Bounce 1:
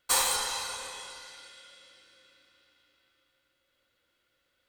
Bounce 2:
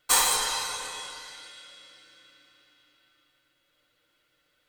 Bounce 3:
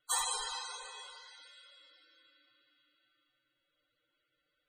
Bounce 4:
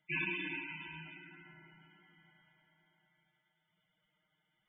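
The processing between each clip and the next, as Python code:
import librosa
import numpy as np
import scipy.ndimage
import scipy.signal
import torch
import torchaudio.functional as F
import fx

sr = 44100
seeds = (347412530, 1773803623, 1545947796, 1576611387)

y1 = x + 0.56 * np.pad(x, (int(6.6 * sr / 1000.0), 0))[:len(x)]
y1 = F.gain(torch.from_numpy(y1), 3.0).numpy()
y2 = fx.spec_topn(y1, sr, count=64)
y2 = F.gain(torch.from_numpy(y2), -9.0).numpy()
y3 = y2 + 10.0 ** (-8.5 / 20.0) * np.pad(y2, (int(105 * sr / 1000.0), 0))[:len(y2)]
y3 = fx.freq_invert(y3, sr, carrier_hz=3500)
y3 = F.gain(torch.from_numpy(y3), 1.0).numpy()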